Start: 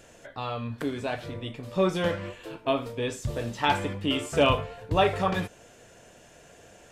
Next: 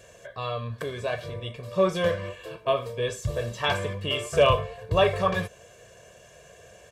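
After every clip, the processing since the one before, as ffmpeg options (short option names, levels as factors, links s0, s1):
-af "highpass=45,aecho=1:1:1.8:0.82,volume=0.891"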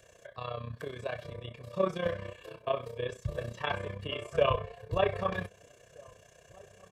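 -filter_complex "[0:a]acrossover=split=360|480|3400[s0][s1][s2][s3];[s3]acompressor=threshold=0.00282:ratio=6[s4];[s0][s1][s2][s4]amix=inputs=4:normalize=0,tremolo=f=31:d=0.75,asplit=2[s5][s6];[s6]adelay=1574,volume=0.0562,highshelf=f=4000:g=-35.4[s7];[s5][s7]amix=inputs=2:normalize=0,volume=0.631"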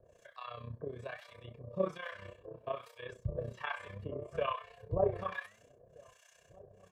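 -filter_complex "[0:a]acrossover=split=2500[s0][s1];[s1]acompressor=threshold=0.002:ratio=4:attack=1:release=60[s2];[s0][s2]amix=inputs=2:normalize=0,flanger=delay=2.1:depth=9.2:regen=86:speed=0.65:shape=triangular,acrossover=split=840[s3][s4];[s3]aeval=exprs='val(0)*(1-1/2+1/2*cos(2*PI*1.2*n/s))':c=same[s5];[s4]aeval=exprs='val(0)*(1-1/2-1/2*cos(2*PI*1.2*n/s))':c=same[s6];[s5][s6]amix=inputs=2:normalize=0,volume=1.58"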